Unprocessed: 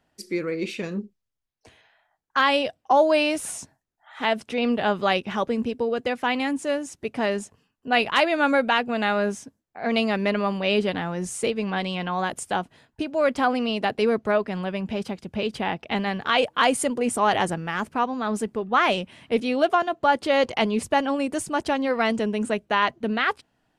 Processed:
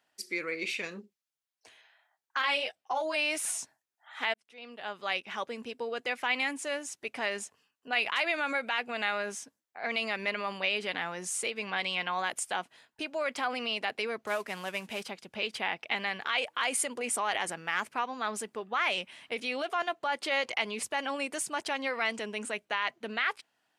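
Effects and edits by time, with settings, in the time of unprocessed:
2.42–3.16 s: three-phase chorus
4.34–6.07 s: fade in
14.27–15.03 s: CVSD coder 64 kbps
whole clip: peak limiter -17.5 dBFS; high-pass 1.3 kHz 6 dB/octave; dynamic bell 2.2 kHz, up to +6 dB, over -47 dBFS, Q 3.1

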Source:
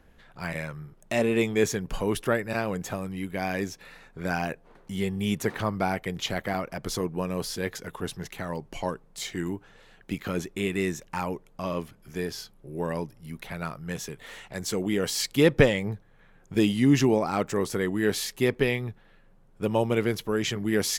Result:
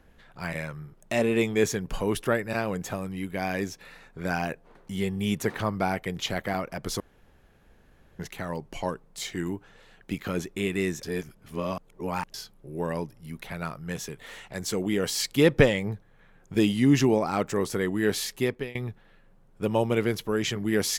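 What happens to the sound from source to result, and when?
7.00–8.19 s: room tone
11.03–12.34 s: reverse
18.35–18.75 s: fade out, to -23 dB

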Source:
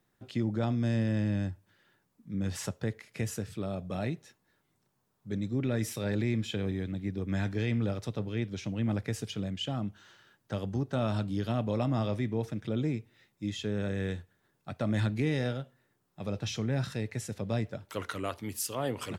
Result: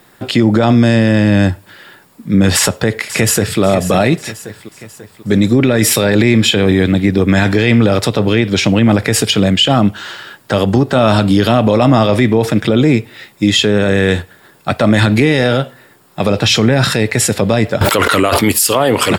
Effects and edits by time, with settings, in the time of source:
2.55–3.60 s: echo throw 540 ms, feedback 50%, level -14 dB
17.81–18.52 s: level flattener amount 100%
whole clip: bass shelf 210 Hz -11 dB; band-stop 6.1 kHz, Q 6.8; loudness maximiser +31 dB; trim -1 dB

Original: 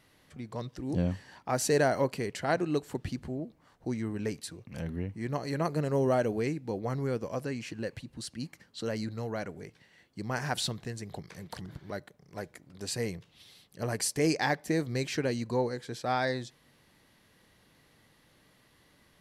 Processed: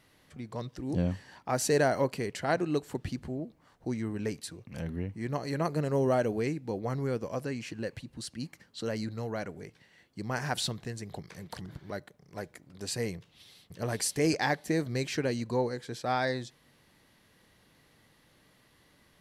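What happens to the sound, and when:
13.17–13.81 s: echo throw 530 ms, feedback 35%, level 0 dB

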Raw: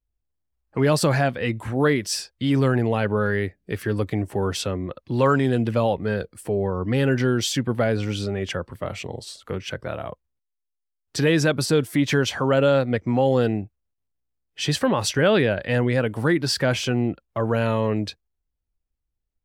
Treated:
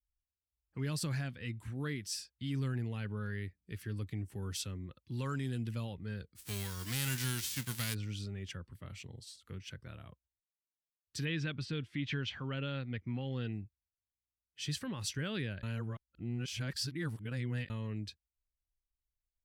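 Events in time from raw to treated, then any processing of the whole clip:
4.33–5.85 s: treble shelf 6.4 kHz +7.5 dB
6.35–7.93 s: formants flattened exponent 0.3
11.25–13.53 s: resonant low-pass 3 kHz, resonance Q 1.5
15.63–17.70 s: reverse
whole clip: amplifier tone stack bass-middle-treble 6-0-2; trim +2 dB

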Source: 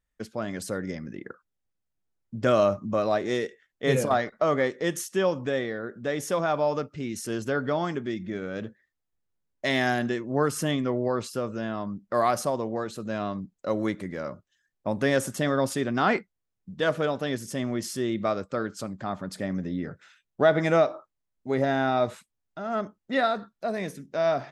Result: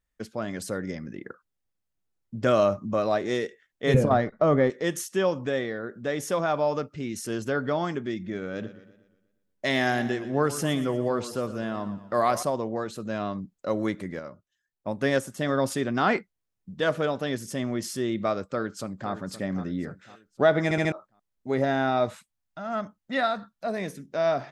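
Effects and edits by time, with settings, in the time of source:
3.94–4.70 s: tilt EQ -3 dB/octave
8.41–12.43 s: modulated delay 119 ms, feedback 49%, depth 89 cents, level -14 dB
14.19–15.49 s: upward expansion, over -35 dBFS
18.45–19.11 s: echo throw 520 ms, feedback 40%, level -11.5 dB
20.64 s: stutter in place 0.07 s, 4 plays
22.09–23.67 s: peaking EQ 390 Hz -12.5 dB 0.5 oct

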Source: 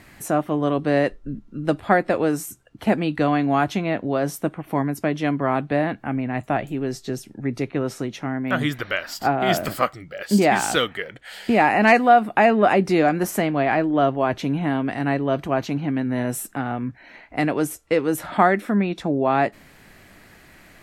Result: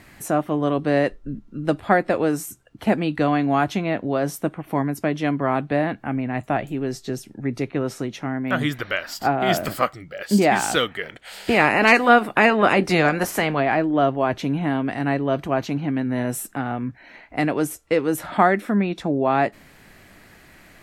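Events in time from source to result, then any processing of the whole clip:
11.02–13.59 s: spectral peaks clipped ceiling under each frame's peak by 13 dB

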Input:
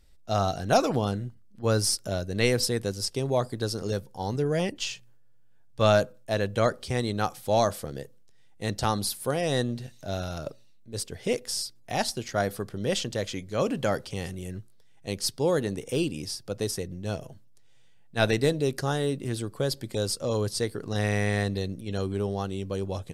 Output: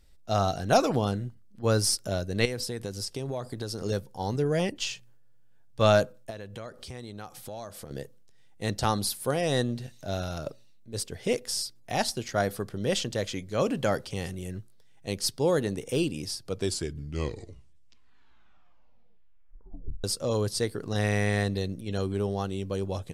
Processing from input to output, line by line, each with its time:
2.45–3.81 s: compression 4:1, threshold -30 dBFS
6.30–7.91 s: compression 4:1, threshold -39 dBFS
16.30 s: tape stop 3.74 s

